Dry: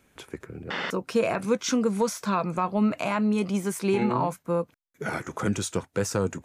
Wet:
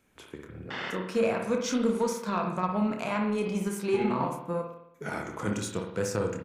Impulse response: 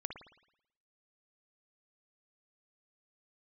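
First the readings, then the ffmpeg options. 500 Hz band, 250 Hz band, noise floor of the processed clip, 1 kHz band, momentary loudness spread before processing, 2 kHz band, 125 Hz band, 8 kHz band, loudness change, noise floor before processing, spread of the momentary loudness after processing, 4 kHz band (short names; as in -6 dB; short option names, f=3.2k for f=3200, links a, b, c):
-2.0 dB, -3.5 dB, -55 dBFS, -3.0 dB, 10 LU, -3.0 dB, -4.0 dB, -5.0 dB, -3.0 dB, -66 dBFS, 12 LU, -4.0 dB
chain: -filter_complex "[0:a]asplit=2[a][b];[b]adelay=28,volume=-7.5dB[c];[a][c]amix=inputs=2:normalize=0[d];[1:a]atrim=start_sample=2205[e];[d][e]afir=irnorm=-1:irlink=0,aeval=exprs='0.251*(cos(1*acos(clip(val(0)/0.251,-1,1)))-cos(1*PI/2))+0.00631*(cos(7*acos(clip(val(0)/0.251,-1,1)))-cos(7*PI/2))':c=same,volume=-2dB"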